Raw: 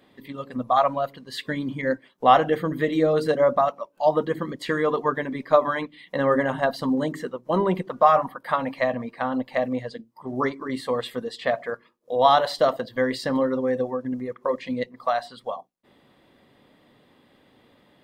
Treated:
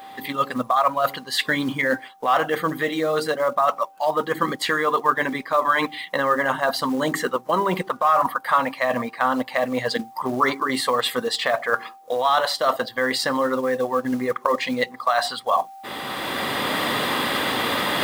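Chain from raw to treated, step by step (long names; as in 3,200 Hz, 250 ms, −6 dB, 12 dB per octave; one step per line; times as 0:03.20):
camcorder AGC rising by 16 dB per second
spectral tilt +2.5 dB per octave
in parallel at −4.5 dB: gain into a clipping stage and back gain 10.5 dB
on the sum: steady tone 780 Hz −46 dBFS
log-companded quantiser 6 bits
reversed playback
downward compressor 5 to 1, threshold −27 dBFS, peak gain reduction 17.5 dB
reversed playback
parametric band 1,200 Hz +7 dB 0.96 octaves
level +5 dB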